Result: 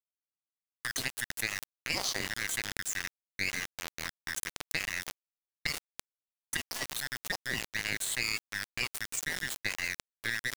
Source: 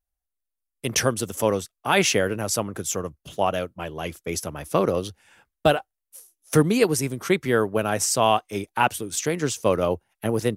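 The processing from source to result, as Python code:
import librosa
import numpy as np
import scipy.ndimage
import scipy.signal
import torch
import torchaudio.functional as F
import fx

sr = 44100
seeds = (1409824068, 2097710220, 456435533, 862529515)

y = fx.band_shuffle(x, sr, order='2143')
y = scipy.signal.sosfilt(scipy.signal.butter(2, 48.0, 'highpass', fs=sr, output='sos'), y)
y = fx.env_phaser(y, sr, low_hz=470.0, high_hz=1700.0, full_db=-15.5)
y = fx.comb_fb(y, sr, f0_hz=130.0, decay_s=0.28, harmonics='all', damping=0.0, mix_pct=60)
y = fx.echo_feedback(y, sr, ms=333, feedback_pct=23, wet_db=-18)
y = fx.cheby_harmonics(y, sr, harmonics=(2, 5, 6), levels_db=(-9, -44, -41), full_scale_db=-14.0)
y = fx.peak_eq(y, sr, hz=6600.0, db=8.5, octaves=1.5)
y = fx.power_curve(y, sr, exponent=1.4)
y = np.where(np.abs(y) >= 10.0 ** (-38.0 / 20.0), y, 0.0)
y = fx.env_flatten(y, sr, amount_pct=70)
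y = y * librosa.db_to_amplitude(-5.5)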